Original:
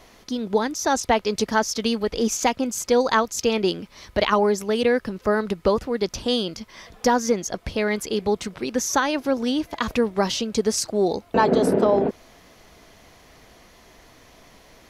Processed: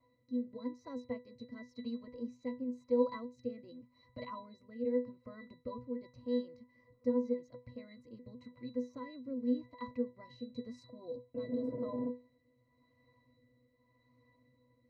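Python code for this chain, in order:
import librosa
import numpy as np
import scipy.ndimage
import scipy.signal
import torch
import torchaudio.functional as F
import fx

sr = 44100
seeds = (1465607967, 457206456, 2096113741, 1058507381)

y = fx.rotary(x, sr, hz=0.9)
y = fx.octave_resonator(y, sr, note='B', decay_s=0.24)
y = y * librosa.db_to_amplitude(-3.5)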